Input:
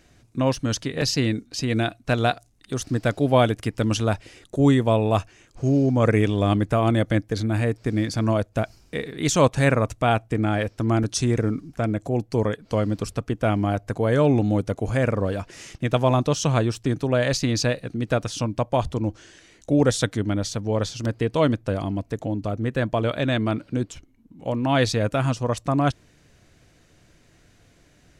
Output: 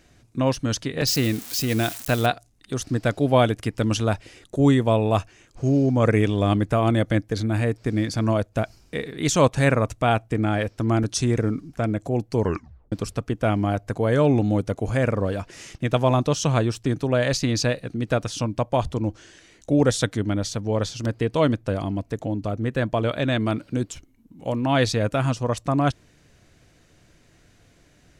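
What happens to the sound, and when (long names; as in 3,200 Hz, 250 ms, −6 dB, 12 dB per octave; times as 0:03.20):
0:01.07–0:02.26: spike at every zero crossing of −21.5 dBFS
0:12.41: tape stop 0.51 s
0:23.40–0:24.61: high-shelf EQ 6,300 Hz +7.5 dB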